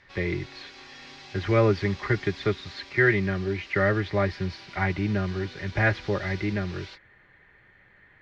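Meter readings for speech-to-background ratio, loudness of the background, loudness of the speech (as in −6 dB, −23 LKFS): 18.5 dB, −45.0 LKFS, −26.5 LKFS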